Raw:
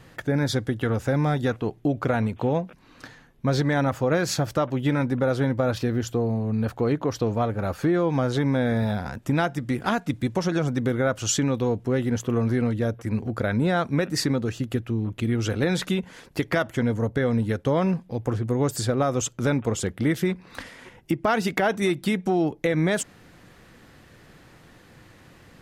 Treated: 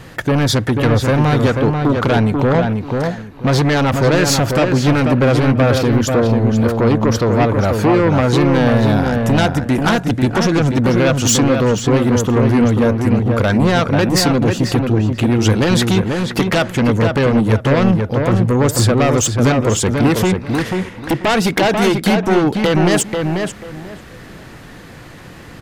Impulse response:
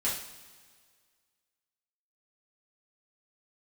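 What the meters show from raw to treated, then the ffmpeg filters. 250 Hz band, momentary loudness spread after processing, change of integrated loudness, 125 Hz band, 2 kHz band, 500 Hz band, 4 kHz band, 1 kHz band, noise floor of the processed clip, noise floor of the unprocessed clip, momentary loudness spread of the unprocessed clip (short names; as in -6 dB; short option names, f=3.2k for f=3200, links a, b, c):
+10.5 dB, 5 LU, +10.0 dB, +11.0 dB, +10.0 dB, +10.0 dB, +12.5 dB, +10.5 dB, -36 dBFS, -52 dBFS, 5 LU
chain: -filter_complex "[0:a]aeval=exprs='0.316*sin(PI/2*2.82*val(0)/0.316)':c=same,asplit=2[a][b];[b]adelay=489,lowpass=f=2.5k:p=1,volume=-4dB,asplit=2[c][d];[d]adelay=489,lowpass=f=2.5k:p=1,volume=0.23,asplit=2[e][f];[f]adelay=489,lowpass=f=2.5k:p=1,volume=0.23[g];[a][c][e][g]amix=inputs=4:normalize=0"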